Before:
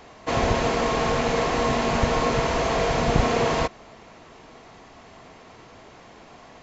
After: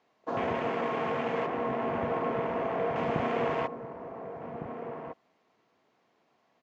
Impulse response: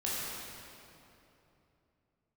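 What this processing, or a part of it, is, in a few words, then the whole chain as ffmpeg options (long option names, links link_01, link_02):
over-cleaned archive recording: -filter_complex "[0:a]highpass=170,lowpass=5900,afwtdn=0.0316,asettb=1/sr,asplit=3[link_01][link_02][link_03];[link_01]atrim=end=1.464[link_04];[link_02]atrim=start=1.46:end=2.96,asetpts=PTS-STARTPTS,afade=type=in:duration=0.004:curve=qsin,afade=type=out:start_time=1.496:duration=0.004:curve=qsin,highshelf=frequency=2500:gain=-10.5[link_05];[link_03]atrim=start=2.956[link_06];[link_04][link_05]acrossfade=duration=0.004:curve1=hsin:curve2=qsin[link_07];[link_07][link_06]acrossfade=duration=0.004:curve1=qsin:curve2=hsin,asplit=2[link_08][link_09];[link_09]adelay=1458,volume=-8dB,highshelf=frequency=4000:gain=-32.8[link_10];[link_08][link_10]amix=inputs=2:normalize=0,volume=-7dB"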